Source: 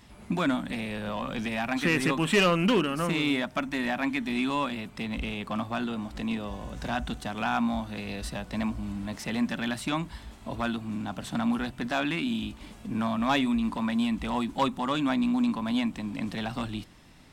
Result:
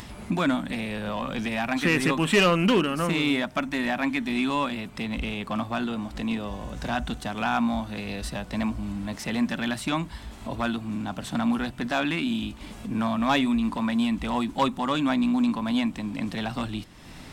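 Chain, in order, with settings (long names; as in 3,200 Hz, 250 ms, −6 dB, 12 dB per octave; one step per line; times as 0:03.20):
upward compression, threshold −35 dBFS
level +2.5 dB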